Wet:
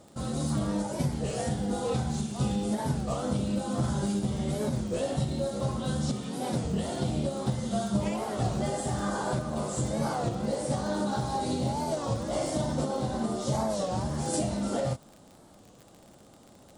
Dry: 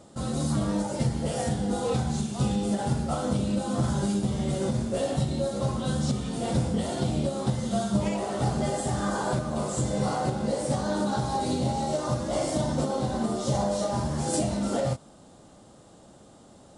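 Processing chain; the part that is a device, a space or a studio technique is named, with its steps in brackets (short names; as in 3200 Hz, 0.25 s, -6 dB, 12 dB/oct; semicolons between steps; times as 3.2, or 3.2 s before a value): 6.1–6.66 HPF 140 Hz 12 dB/oct; warped LP (record warp 33 1/3 rpm, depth 160 cents; crackle 45/s -37 dBFS; pink noise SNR 43 dB); gain -2.5 dB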